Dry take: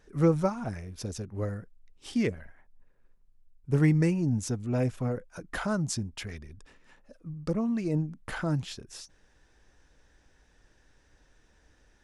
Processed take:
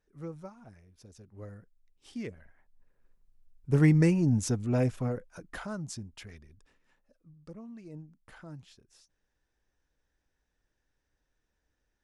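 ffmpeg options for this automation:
-af "volume=1.26,afade=t=in:st=1.1:d=0.49:silence=0.446684,afade=t=in:st=2.3:d=1.8:silence=0.223872,afade=t=out:st=4.6:d=1.07:silence=0.298538,afade=t=out:st=6.27:d=1.08:silence=0.375837"

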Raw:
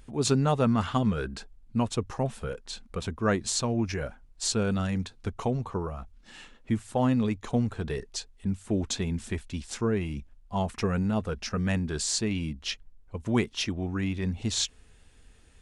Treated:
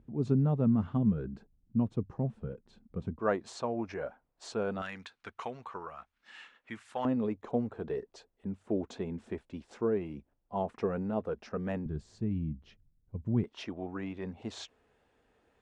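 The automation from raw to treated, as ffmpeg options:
-af "asetnsamples=n=441:p=0,asendcmd='3.19 bandpass f 690;4.82 bandpass f 1700;7.05 bandpass f 500;11.86 bandpass f 130;13.44 bandpass f 650',bandpass=f=180:t=q:w=1:csg=0"

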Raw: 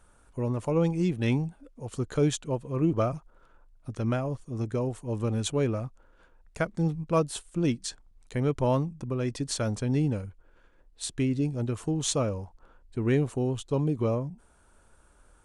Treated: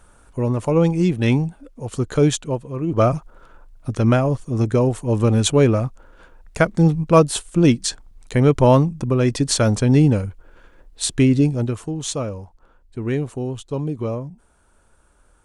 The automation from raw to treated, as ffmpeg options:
-af "volume=10.6,afade=t=out:st=2.36:d=0.5:silence=0.375837,afade=t=in:st=2.86:d=0.21:silence=0.251189,afade=t=out:st=11.38:d=0.49:silence=0.316228"

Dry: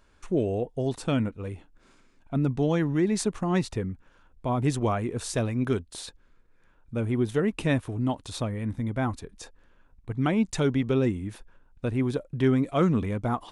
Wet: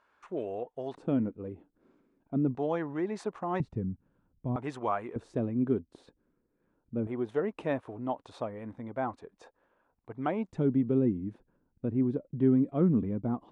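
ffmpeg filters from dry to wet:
-af "asetnsamples=n=441:p=0,asendcmd='0.95 bandpass f 320;2.55 bandpass f 800;3.6 bandpass f 170;4.56 bandpass f 980;5.16 bandpass f 280;7.07 bandpass f 700;10.52 bandpass f 240',bandpass=f=1100:t=q:w=1.1:csg=0"

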